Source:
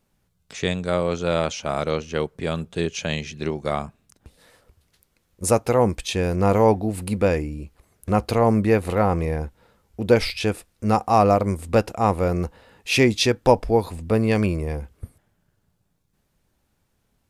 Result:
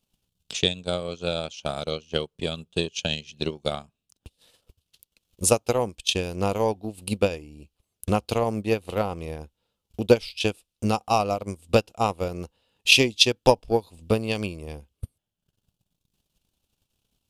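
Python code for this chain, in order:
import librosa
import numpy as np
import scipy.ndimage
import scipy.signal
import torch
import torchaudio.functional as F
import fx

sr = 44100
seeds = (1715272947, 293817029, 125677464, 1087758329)

y = fx.transient(x, sr, attack_db=11, sustain_db=-11)
y = fx.high_shelf_res(y, sr, hz=2400.0, db=6.5, q=3.0)
y = y * 10.0 ** (-9.5 / 20.0)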